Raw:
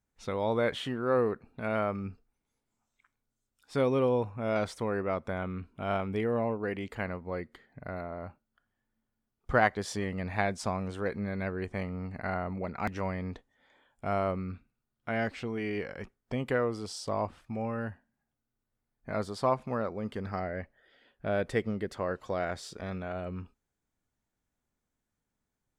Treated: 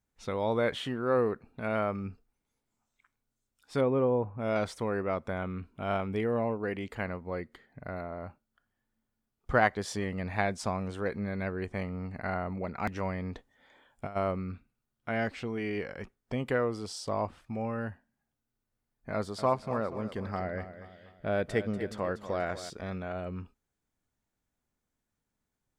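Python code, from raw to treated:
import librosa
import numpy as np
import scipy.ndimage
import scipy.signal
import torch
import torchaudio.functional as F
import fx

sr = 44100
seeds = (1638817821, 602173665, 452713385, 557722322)

y = fx.lowpass(x, sr, hz=fx.line((3.8, 1800.0), (4.38, 1100.0)), slope=12, at=(3.8, 4.38), fade=0.02)
y = fx.over_compress(y, sr, threshold_db=-35.0, ratio=-0.5, at=(13.35, 14.15), fade=0.02)
y = fx.echo_feedback(y, sr, ms=241, feedback_pct=44, wet_db=-12.5, at=(19.14, 22.7))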